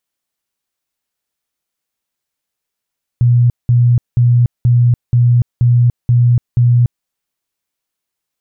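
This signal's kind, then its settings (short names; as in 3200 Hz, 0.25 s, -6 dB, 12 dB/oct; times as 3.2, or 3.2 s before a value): tone bursts 121 Hz, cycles 35, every 0.48 s, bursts 8, -6.5 dBFS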